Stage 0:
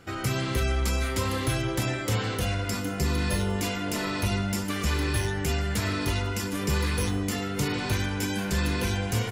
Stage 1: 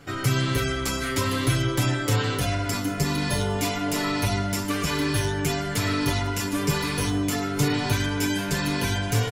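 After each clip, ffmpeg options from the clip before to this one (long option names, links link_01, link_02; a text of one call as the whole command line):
ffmpeg -i in.wav -af "aecho=1:1:7:0.84,volume=1.5dB" out.wav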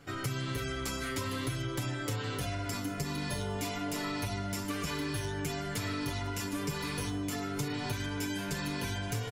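ffmpeg -i in.wav -af "acompressor=threshold=-24dB:ratio=6,volume=-7dB" out.wav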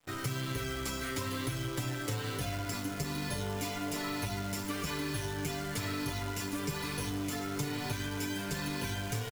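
ffmpeg -i in.wav -af "aeval=exprs='sgn(val(0))*max(abs(val(0))-0.002,0)':channel_layout=same,aecho=1:1:931:0.0841,acrusher=bits=8:dc=4:mix=0:aa=0.000001" out.wav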